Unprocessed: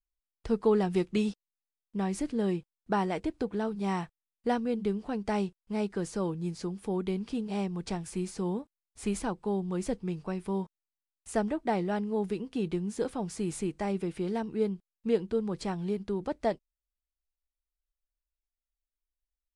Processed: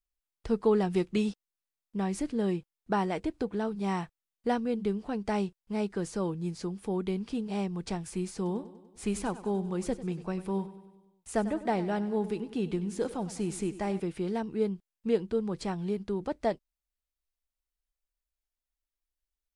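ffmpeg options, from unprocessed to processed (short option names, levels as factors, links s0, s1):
-filter_complex "[0:a]asettb=1/sr,asplit=3[s0][s1][s2];[s0]atrim=end=8.364[s3];[s1]atrim=start=8.36:end=14,asetpts=PTS-STARTPTS,afade=t=in:d=0.004:c=qsin,afade=t=out:st=5.636:d=0.004:c=qsin,aecho=1:1:97|194|291|388|485|582:0.178|0.101|0.0578|0.0329|0.0188|0.0107,atrim=end_sample=248724[s4];[s2]atrim=start=13.996[s5];[s3][s4]acrossfade=d=0.004:c1=hsin:c2=qsin[s6];[s6][s5]acrossfade=d=0.004:c1=qsin:c2=hsin"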